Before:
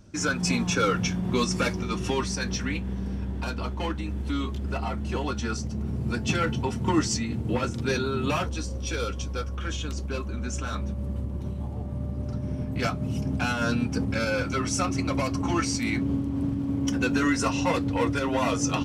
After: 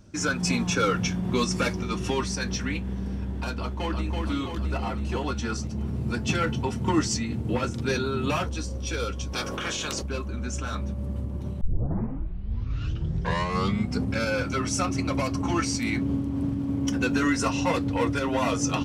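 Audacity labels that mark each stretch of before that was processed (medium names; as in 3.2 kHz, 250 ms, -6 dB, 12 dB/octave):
3.590000	4.250000	echo throw 330 ms, feedback 65%, level -3.5 dB
9.320000	10.010000	spectral peaks clipped ceiling under each frame's peak by 25 dB
11.610000	11.610000	tape start 2.50 s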